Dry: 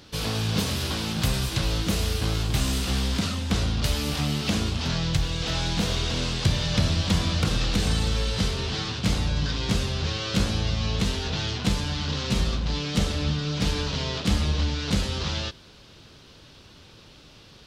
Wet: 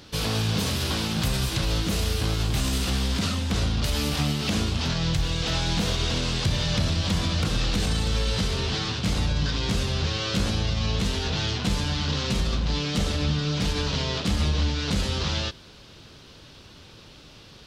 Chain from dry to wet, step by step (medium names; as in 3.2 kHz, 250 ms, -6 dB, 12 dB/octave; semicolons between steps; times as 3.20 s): peak limiter -17.5 dBFS, peak gain reduction 5 dB; trim +2 dB